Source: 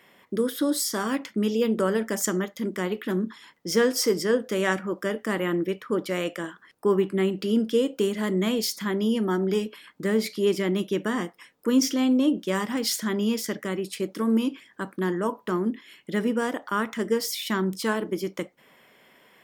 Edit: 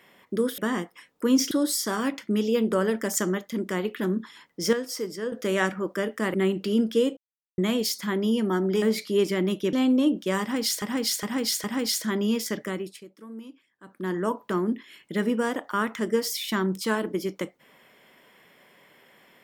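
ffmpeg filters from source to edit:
-filter_complex "[0:a]asplit=15[a][b][c][d][e][f][g][h][i][j][k][l][m][n][o];[a]atrim=end=0.582[p];[b]atrim=start=11.008:end=11.942[q];[c]atrim=start=0.578:end=3.802[r];[d]atrim=start=3.798:end=4.392,asetpts=PTS-STARTPTS,volume=-8.5dB[s];[e]atrim=start=4.388:end=5.412[t];[f]atrim=start=7.118:end=7.95,asetpts=PTS-STARTPTS,afade=t=out:st=0.828:d=0.004:c=hsin[u];[g]atrim=start=7.95:end=8.36,asetpts=PTS-STARTPTS,volume=0[v];[h]atrim=start=8.36:end=9.602,asetpts=PTS-STARTPTS,afade=t=in:d=0.004:c=hsin[w];[i]atrim=start=10.098:end=11.012[x];[j]atrim=start=11.938:end=13.032[y];[k]atrim=start=12.618:end=13.032[z];[l]atrim=start=12.618:end=13.032[aa];[m]atrim=start=12.618:end=14.03,asetpts=PTS-STARTPTS,afade=t=out:st=1.022:d=0.39:silence=0.125893[ab];[n]atrim=start=14.03:end=14.81,asetpts=PTS-STARTPTS,volume=-18dB[ac];[o]atrim=start=14.81,asetpts=PTS-STARTPTS,afade=t=in:d=0.39:silence=0.125893[ad];[p][q]acrossfade=d=0.004:c1=hsin:c2=hsin[ae];[ae][r]acrossfade=d=0.004:c1=hsin:c2=hsin[af];[af][s]acrossfade=d=0.004:c1=hsin:c2=hsin[ag];[ag][t]acrossfade=d=0.004:c1=hsin:c2=hsin[ah];[u][v][w]concat=n=3:v=0:a=1[ai];[ah][ai]acrossfade=d=0.004:c1=hsin:c2=hsin[aj];[aj][x]acrossfade=d=0.004:c1=hsin:c2=hsin[ak];[ak][y]acrossfade=d=0.004:c1=hsin:c2=hsin[al];[al][z]acrossfade=d=0.004:c1=hsin:c2=hsin[am];[am][aa]acrossfade=d=0.004:c1=hsin:c2=hsin[an];[ab][ac][ad]concat=n=3:v=0:a=1[ao];[an][ao]acrossfade=d=0.004:c1=hsin:c2=hsin"

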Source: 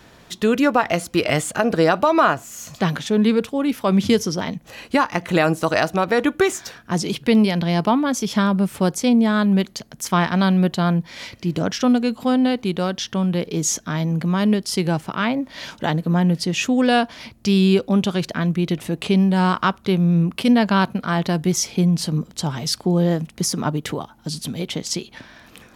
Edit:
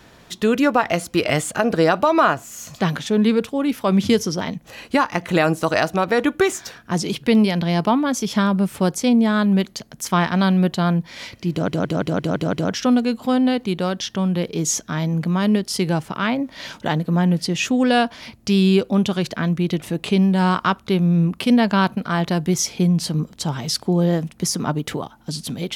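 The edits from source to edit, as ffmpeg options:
-filter_complex "[0:a]asplit=7[a][b][c][d][e][f][g];[a]atrim=end=11.682[h];[b]atrim=start=11.508:end=11.682[i];[c]atrim=start=11.508:end=11.682[j];[d]atrim=start=11.508:end=11.682[k];[e]atrim=start=11.508:end=11.682[l];[f]atrim=start=11.508:end=11.682[m];[g]atrim=start=11.508[n];[h][i]acrossfade=d=0.004:c1=hsin:c2=hsin[o];[o][j]acrossfade=d=0.004:c1=hsin:c2=hsin[p];[p][k]acrossfade=d=0.004:c1=hsin:c2=hsin[q];[q][l]acrossfade=d=0.004:c1=hsin:c2=hsin[r];[r][m]acrossfade=d=0.004:c1=hsin:c2=hsin[s];[s][n]acrossfade=d=0.004:c1=hsin:c2=hsin"

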